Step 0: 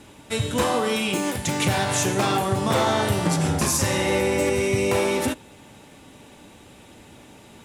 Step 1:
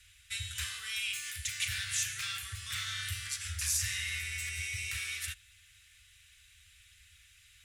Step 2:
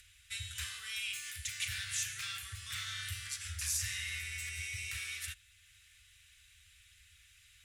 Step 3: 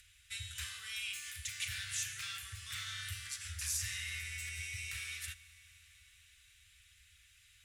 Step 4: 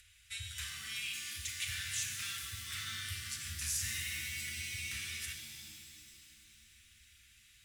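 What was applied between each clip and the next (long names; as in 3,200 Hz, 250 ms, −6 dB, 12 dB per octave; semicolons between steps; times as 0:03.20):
inverse Chebyshev band-stop filter 150–940 Hz, stop band 40 dB; level −7 dB
upward compression, threshold −54 dBFS; level −3.5 dB
convolution reverb RT60 5.1 s, pre-delay 29 ms, DRR 16.5 dB; level −2 dB
reverb with rising layers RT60 2.1 s, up +7 semitones, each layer −2 dB, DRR 6 dB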